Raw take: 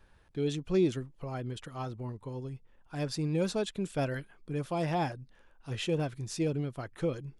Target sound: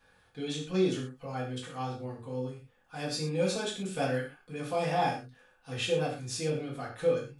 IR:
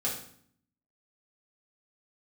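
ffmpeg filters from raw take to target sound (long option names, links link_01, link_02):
-filter_complex "[0:a]lowshelf=frequency=460:gain=-11[link_01];[1:a]atrim=start_sample=2205,atrim=end_sample=6174[link_02];[link_01][link_02]afir=irnorm=-1:irlink=0"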